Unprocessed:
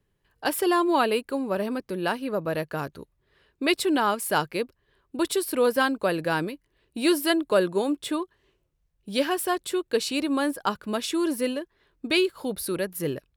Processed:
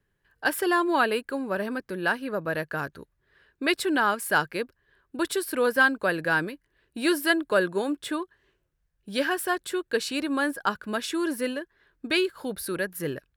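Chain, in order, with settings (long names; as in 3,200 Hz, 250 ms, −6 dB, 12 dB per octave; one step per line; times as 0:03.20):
parametric band 1,600 Hz +10 dB 0.48 octaves
level −2.5 dB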